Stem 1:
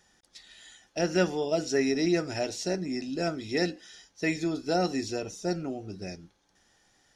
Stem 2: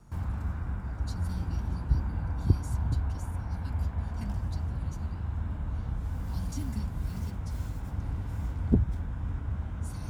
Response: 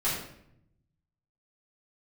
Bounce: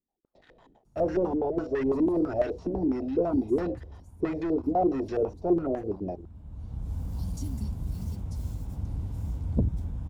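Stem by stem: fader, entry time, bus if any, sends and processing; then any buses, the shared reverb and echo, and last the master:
−8.0 dB, 0.00 s, no send, parametric band 130 Hz −10 dB 2.3 octaves; leveller curve on the samples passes 5; low-pass on a step sequencer 12 Hz 280–1,700 Hz
+1.0 dB, 0.85 s, no send, automatic ducking −16 dB, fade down 1.45 s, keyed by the first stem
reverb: not used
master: parametric band 1,600 Hz −14 dB 1.6 octaves; saturating transformer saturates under 220 Hz

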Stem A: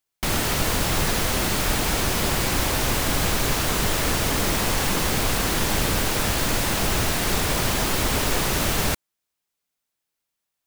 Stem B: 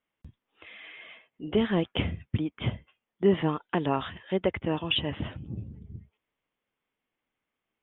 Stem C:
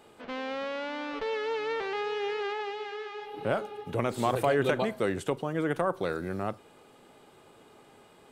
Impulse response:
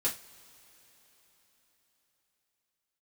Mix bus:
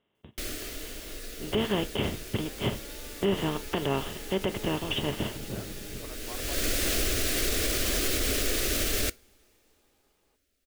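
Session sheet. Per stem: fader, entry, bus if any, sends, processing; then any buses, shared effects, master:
−2.0 dB, 0.15 s, send −23 dB, phaser with its sweep stopped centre 380 Hz, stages 4; automatic ducking −23 dB, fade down 1.05 s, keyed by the second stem
+0.5 dB, 0.00 s, send −17 dB, compressor on every frequency bin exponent 0.4; expander for the loud parts 2.5 to 1, over −40 dBFS
−18.0 dB, 2.05 s, no send, no processing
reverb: on, pre-delay 3 ms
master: brickwall limiter −17 dBFS, peak gain reduction 9 dB

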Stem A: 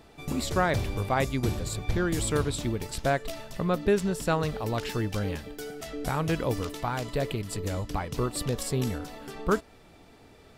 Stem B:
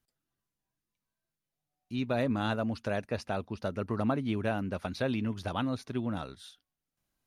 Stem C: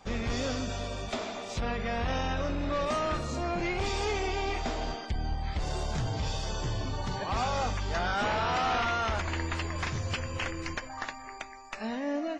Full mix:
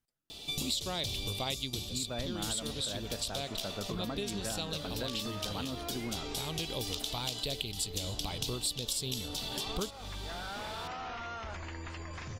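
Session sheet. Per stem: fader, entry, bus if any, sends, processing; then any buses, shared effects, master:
0.0 dB, 0.30 s, no send, high shelf with overshoot 2,400 Hz +13 dB, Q 3; automatic ducking −8 dB, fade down 0.25 s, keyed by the second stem
−4.0 dB, 0.00 s, no send, no processing
−3.0 dB, 2.35 s, no send, brickwall limiter −32 dBFS, peak gain reduction 10.5 dB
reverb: not used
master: downward compressor 5 to 1, threshold −33 dBFS, peak gain reduction 17 dB

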